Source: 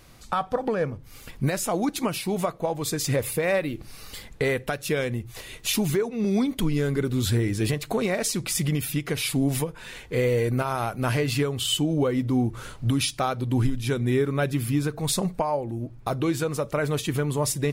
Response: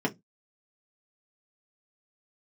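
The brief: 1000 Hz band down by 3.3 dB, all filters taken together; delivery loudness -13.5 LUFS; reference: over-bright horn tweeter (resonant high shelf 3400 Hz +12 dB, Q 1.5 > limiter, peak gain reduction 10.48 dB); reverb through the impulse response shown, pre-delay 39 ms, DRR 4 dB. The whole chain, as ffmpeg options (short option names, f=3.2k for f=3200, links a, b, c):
-filter_complex "[0:a]equalizer=f=1k:t=o:g=-3.5,asplit=2[a][b];[1:a]atrim=start_sample=2205,adelay=39[c];[b][c]afir=irnorm=-1:irlink=0,volume=-13dB[d];[a][d]amix=inputs=2:normalize=0,highshelf=f=3.4k:t=q:w=1.5:g=12,volume=8dB,alimiter=limit=-3dB:level=0:latency=1"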